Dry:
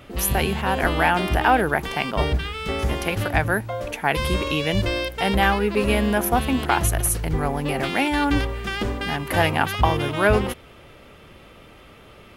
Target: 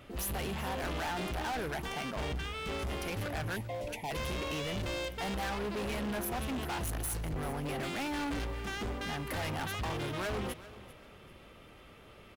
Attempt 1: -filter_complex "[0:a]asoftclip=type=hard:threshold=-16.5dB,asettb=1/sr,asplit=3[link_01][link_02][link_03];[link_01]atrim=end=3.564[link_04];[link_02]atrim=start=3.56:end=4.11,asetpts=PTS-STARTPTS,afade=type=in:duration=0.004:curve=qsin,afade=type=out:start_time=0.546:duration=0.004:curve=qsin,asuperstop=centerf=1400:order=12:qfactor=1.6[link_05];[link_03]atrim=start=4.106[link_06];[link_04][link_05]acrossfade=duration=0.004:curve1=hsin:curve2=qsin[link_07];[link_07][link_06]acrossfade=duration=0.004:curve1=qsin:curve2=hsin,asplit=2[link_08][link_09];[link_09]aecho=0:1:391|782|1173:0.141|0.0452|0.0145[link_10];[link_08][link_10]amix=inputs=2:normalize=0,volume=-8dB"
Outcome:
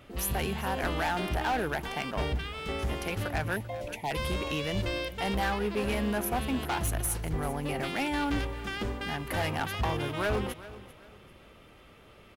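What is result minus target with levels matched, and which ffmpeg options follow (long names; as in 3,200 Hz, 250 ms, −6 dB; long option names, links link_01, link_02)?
hard clipping: distortion −6 dB
-filter_complex "[0:a]asoftclip=type=hard:threshold=-25.5dB,asettb=1/sr,asplit=3[link_01][link_02][link_03];[link_01]atrim=end=3.564[link_04];[link_02]atrim=start=3.56:end=4.11,asetpts=PTS-STARTPTS,afade=type=in:duration=0.004:curve=qsin,afade=type=out:start_time=0.546:duration=0.004:curve=qsin,asuperstop=centerf=1400:order=12:qfactor=1.6[link_05];[link_03]atrim=start=4.106[link_06];[link_04][link_05]acrossfade=duration=0.004:curve1=hsin:curve2=qsin[link_07];[link_07][link_06]acrossfade=duration=0.004:curve1=qsin:curve2=hsin,asplit=2[link_08][link_09];[link_09]aecho=0:1:391|782|1173:0.141|0.0452|0.0145[link_10];[link_08][link_10]amix=inputs=2:normalize=0,volume=-8dB"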